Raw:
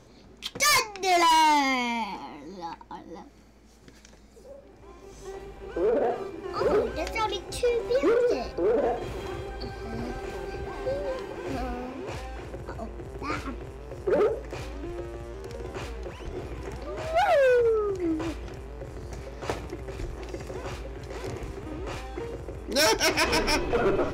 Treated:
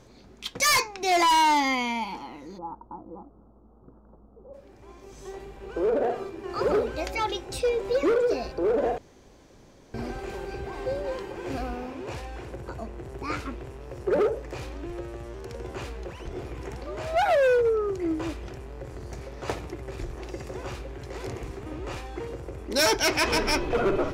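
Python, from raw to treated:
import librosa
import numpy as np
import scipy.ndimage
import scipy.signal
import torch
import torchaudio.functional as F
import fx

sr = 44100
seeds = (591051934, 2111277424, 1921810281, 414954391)

y = fx.steep_lowpass(x, sr, hz=1300.0, slope=72, at=(2.57, 4.53), fade=0.02)
y = fx.edit(y, sr, fx.room_tone_fill(start_s=8.98, length_s=0.96), tone=tone)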